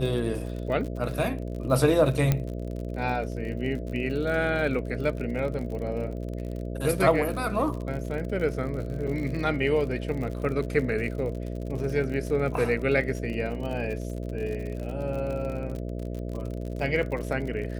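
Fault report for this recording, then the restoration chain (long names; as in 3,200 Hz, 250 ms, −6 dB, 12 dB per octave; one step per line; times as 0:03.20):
mains buzz 60 Hz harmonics 11 −33 dBFS
surface crackle 56 per second −34 dBFS
0:02.32: click −10 dBFS
0:09.07–0:09.08: drop-out 6.2 ms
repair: click removal
hum removal 60 Hz, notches 11
repair the gap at 0:09.07, 6.2 ms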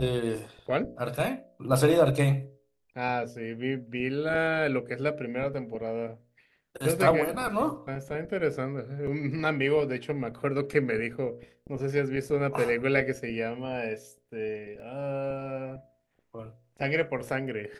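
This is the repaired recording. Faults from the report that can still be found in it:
none of them is left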